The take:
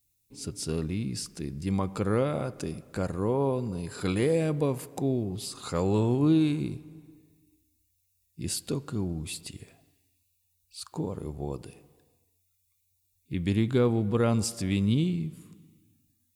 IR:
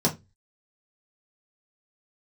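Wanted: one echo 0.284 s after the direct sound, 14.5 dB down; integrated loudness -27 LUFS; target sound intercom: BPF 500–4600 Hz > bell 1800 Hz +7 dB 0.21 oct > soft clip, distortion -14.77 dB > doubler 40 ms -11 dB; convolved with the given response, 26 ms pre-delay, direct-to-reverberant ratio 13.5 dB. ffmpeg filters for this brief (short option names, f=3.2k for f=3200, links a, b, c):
-filter_complex "[0:a]aecho=1:1:284:0.188,asplit=2[a][b];[1:a]atrim=start_sample=2205,adelay=26[c];[b][c]afir=irnorm=-1:irlink=0,volume=-25.5dB[d];[a][d]amix=inputs=2:normalize=0,highpass=500,lowpass=4.6k,equalizer=f=1.8k:t=o:w=0.21:g=7,asoftclip=threshold=-25dB,asplit=2[e][f];[f]adelay=40,volume=-11dB[g];[e][g]amix=inputs=2:normalize=0,volume=10dB"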